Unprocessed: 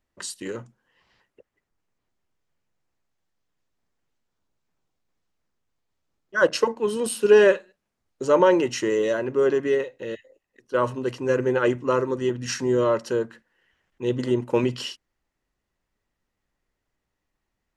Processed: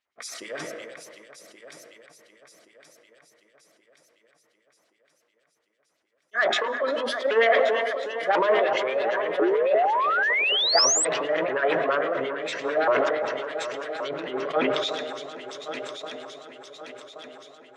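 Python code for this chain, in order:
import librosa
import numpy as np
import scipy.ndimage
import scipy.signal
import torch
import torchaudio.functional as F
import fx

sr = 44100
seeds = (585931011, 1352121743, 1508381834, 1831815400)

p1 = fx.pitch_ramps(x, sr, semitones=5.5, every_ms=348)
p2 = p1 + fx.echo_heads(p1, sr, ms=375, heads='all three', feedback_pct=60, wet_db=-15, dry=0)
p3 = fx.env_lowpass_down(p2, sr, base_hz=2200.0, full_db=-21.0)
p4 = 10.0 ** (-19.0 / 20.0) * np.tanh(p3 / 10.0 ** (-19.0 / 20.0))
p5 = p3 + (p4 * 10.0 ** (-3.5 / 20.0))
p6 = fx.filter_lfo_bandpass(p5, sr, shape='sine', hz=8.9, low_hz=810.0, high_hz=4200.0, q=1.1)
p7 = fx.hum_notches(p6, sr, base_hz=50, count=8)
p8 = fx.rev_freeverb(p7, sr, rt60_s=2.5, hf_ratio=0.35, predelay_ms=105, drr_db=14.0)
p9 = fx.spec_paint(p8, sr, seeds[0], shape='rise', start_s=9.41, length_s=1.64, low_hz=320.0, high_hz=8300.0, level_db=-23.0)
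y = fx.sustainer(p9, sr, db_per_s=25.0)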